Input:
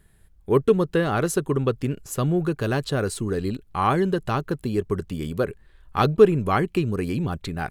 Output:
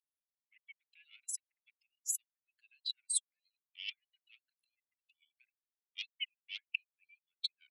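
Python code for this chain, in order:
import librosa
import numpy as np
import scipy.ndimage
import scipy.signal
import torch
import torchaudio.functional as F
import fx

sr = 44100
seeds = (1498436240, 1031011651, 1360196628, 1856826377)

y = fx.spec_expand(x, sr, power=2.8)
y = fx.cheby_harmonics(y, sr, harmonics=(2, 4, 6, 7), levels_db=(-21, -37, -43, -34), full_scale_db=-5.0)
y = scipy.signal.sosfilt(scipy.signal.butter(12, 2400.0, 'highpass', fs=sr, output='sos'), y)
y = fx.over_compress(y, sr, threshold_db=-38.0, ratio=-0.5)
y = y * 10.0 ** (6.5 / 20.0)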